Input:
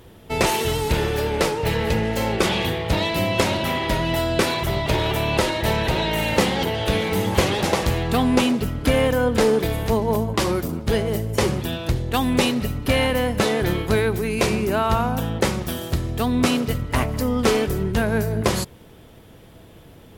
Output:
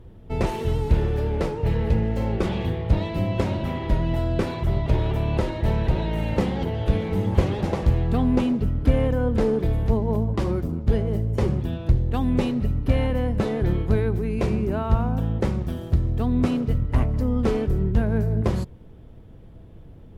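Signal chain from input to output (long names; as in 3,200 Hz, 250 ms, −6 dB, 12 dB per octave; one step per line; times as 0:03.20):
spectral tilt −3.5 dB per octave
level −9 dB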